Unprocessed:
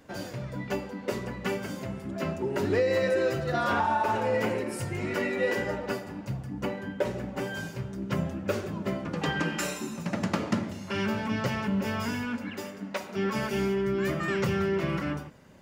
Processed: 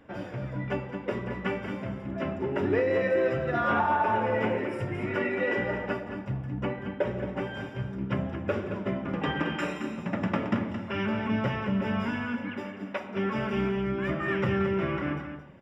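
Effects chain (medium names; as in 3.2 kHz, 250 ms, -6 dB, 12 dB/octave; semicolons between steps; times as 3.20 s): Savitzky-Golay filter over 25 samples; delay 221 ms -9 dB; on a send at -10.5 dB: reverberation RT60 0.40 s, pre-delay 3 ms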